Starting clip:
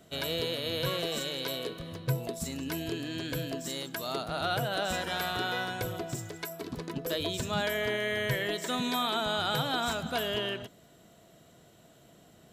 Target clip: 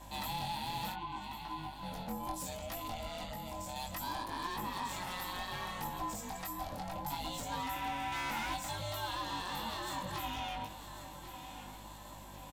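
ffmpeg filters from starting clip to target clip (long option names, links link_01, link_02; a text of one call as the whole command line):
ffmpeg -i in.wav -filter_complex "[0:a]acompressor=threshold=-33dB:ratio=2.5,asplit=3[link_01][link_02][link_03];[link_01]afade=type=out:start_time=0.92:duration=0.02[link_04];[link_02]asplit=3[link_05][link_06][link_07];[link_05]bandpass=frequency=730:width_type=q:width=8,volume=0dB[link_08];[link_06]bandpass=frequency=1090:width_type=q:width=8,volume=-6dB[link_09];[link_07]bandpass=frequency=2440:width_type=q:width=8,volume=-9dB[link_10];[link_08][link_09][link_10]amix=inputs=3:normalize=0,afade=type=in:start_time=0.92:duration=0.02,afade=type=out:start_time=1.82:duration=0.02[link_11];[link_03]afade=type=in:start_time=1.82:duration=0.02[link_12];[link_04][link_11][link_12]amix=inputs=3:normalize=0,asettb=1/sr,asplit=3[link_13][link_14][link_15];[link_13]atrim=end=3.234[link_16];[link_14]atrim=start=3.23:end=3.76,asetpts=PTS-STARTPTS,afade=type=in:duration=0.004:curve=qsin,afade=type=out:start_time=0.526:duration=0.004:curve=qsin,acrossover=split=290|2500[link_17][link_18][link_19];[link_17]acompressor=threshold=-43dB:ratio=4[link_20];[link_18]acompressor=threshold=-47dB:ratio=4[link_21];[link_19]acompressor=threshold=-52dB:ratio=4[link_22];[link_20][link_21][link_22]amix=inputs=3:normalize=0[link_23];[link_15]atrim=start=3.756[link_24];[link_16][link_23]acrossfade=duration=0.004:curve1=hsin:curve2=qsin[link_25];[link_25][link_24]acrossfade=duration=0.004:curve1=qsin:curve2=hsin,asettb=1/sr,asplit=3[link_26][link_27][link_28];[link_26]atrim=end=8.124[link_29];[link_27]atrim=start=8.12:end=8.54,asetpts=PTS-STARTPTS,afade=type=in:duration=0.004:curve=qsin,afade=type=out:start_time=0.416:duration=0.004:curve=qsin,asplit=2[link_30][link_31];[link_31]highpass=frequency=720:poles=1,volume=20dB,asoftclip=type=tanh:threshold=-23.5dB[link_32];[link_30][link_32]amix=inputs=2:normalize=0,lowpass=frequency=2900:poles=1,volume=-6dB[link_33];[link_28]atrim=start=8.536[link_34];[link_29][link_33]acrossfade=duration=0.004:curve1=hsin:curve2=qsin[link_35];[link_35][link_34]acrossfade=duration=0.004:curve1=qsin:curve2=hsin,highshelf=frequency=7400:gain=8,asoftclip=type=hard:threshold=-32.5dB,aeval=exprs='val(0)*sin(2*PI*350*n/s)':channel_layout=same,aecho=1:1:1095|2190|3285|4380:0.1|0.052|0.027|0.0141,alimiter=level_in=16dB:limit=-24dB:level=0:latency=1:release=55,volume=-16dB,aeval=exprs='val(0)+0.000794*(sin(2*PI*50*n/s)+sin(2*PI*2*50*n/s)/2+sin(2*PI*3*50*n/s)/3+sin(2*PI*4*50*n/s)/4+sin(2*PI*5*50*n/s)/5)':channel_layout=same,superequalizer=7b=0.398:9b=2.24,flanger=delay=18.5:depth=4.2:speed=0.66,volume=9dB" out.wav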